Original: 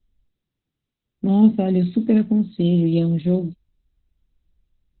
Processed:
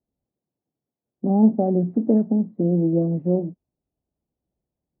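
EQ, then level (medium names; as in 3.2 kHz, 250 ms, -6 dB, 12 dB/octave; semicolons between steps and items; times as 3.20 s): Bessel high-pass 200 Hz, order 2; four-pole ladder low-pass 890 Hz, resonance 40%; distance through air 330 m; +8.5 dB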